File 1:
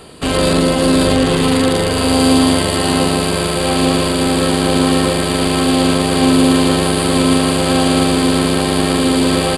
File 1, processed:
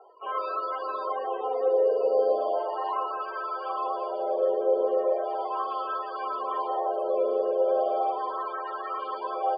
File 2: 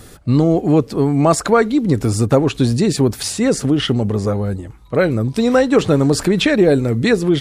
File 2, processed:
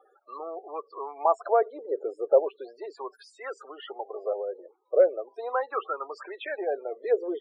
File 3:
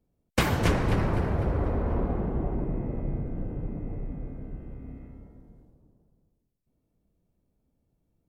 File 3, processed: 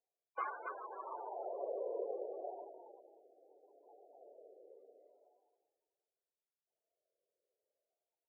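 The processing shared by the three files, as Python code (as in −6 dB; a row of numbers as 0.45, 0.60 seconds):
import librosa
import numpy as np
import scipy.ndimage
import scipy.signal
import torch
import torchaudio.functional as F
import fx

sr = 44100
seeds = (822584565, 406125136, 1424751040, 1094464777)

y = fx.spec_topn(x, sr, count=32)
y = fx.wah_lfo(y, sr, hz=0.37, low_hz=510.0, high_hz=1300.0, q=4.1)
y = scipy.signal.sosfilt(scipy.signal.ellip(4, 1.0, 50, 380.0, 'highpass', fs=sr, output='sos'), y)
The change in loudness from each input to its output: −14.5, −13.0, −14.5 LU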